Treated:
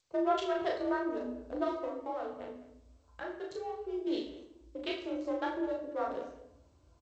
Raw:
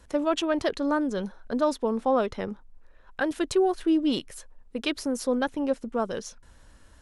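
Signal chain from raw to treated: Wiener smoothing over 25 samples; gate with hold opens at -46 dBFS; tone controls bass -9 dB, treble -5 dB; notch 2400 Hz, Q 23; 1.84–4.07 compressor 1.5:1, threshold -43 dBFS, peak gain reduction 8.5 dB; frequency shift +47 Hz; doubler 36 ms -2.5 dB; speakerphone echo 0.21 s, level -17 dB; shoebox room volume 170 m³, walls mixed, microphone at 0.78 m; gain -8.5 dB; G.722 64 kbps 16000 Hz

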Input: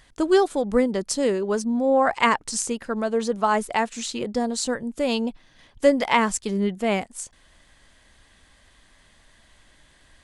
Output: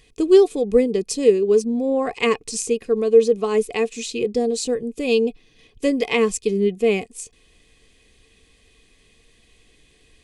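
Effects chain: band shelf 1000 Hz -15 dB; small resonant body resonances 450/720/1100/2500 Hz, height 14 dB, ringing for 45 ms

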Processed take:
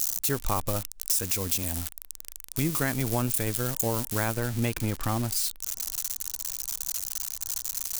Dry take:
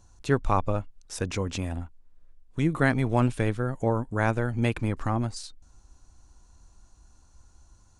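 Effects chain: switching spikes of -21 dBFS; high shelf 4700 Hz +10 dB, from 4.34 s +2 dB; compressor, threshold -22 dBFS, peak gain reduction 8 dB

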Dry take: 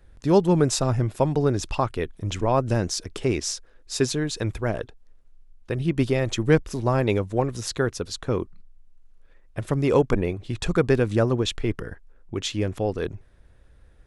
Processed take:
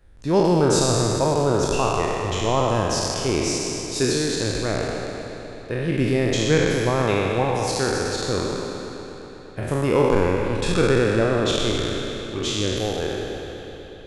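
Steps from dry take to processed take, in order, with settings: spectral trails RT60 2.44 s; analogue delay 0.123 s, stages 4096, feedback 84%, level -13 dB; gain -2.5 dB

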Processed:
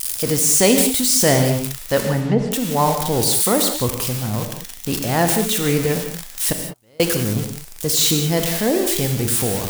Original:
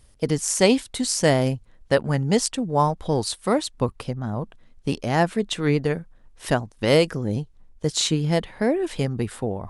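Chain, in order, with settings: switching spikes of -16.5 dBFS; 2–2.52 treble ducked by the level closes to 970 Hz, closed at -14.5 dBFS; transient shaper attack -3 dB, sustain +4 dB; 6.52–7 flipped gate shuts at -13 dBFS, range -36 dB; non-linear reverb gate 0.22 s flat, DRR 4.5 dB; gain +2.5 dB

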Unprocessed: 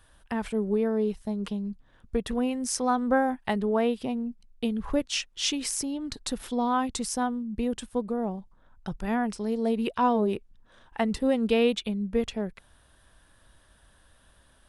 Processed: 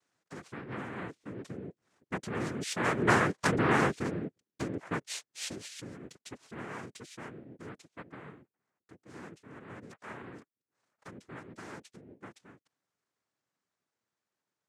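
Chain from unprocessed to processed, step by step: Doppler pass-by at 3.46, 5 m/s, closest 2.7 m; noise vocoder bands 3

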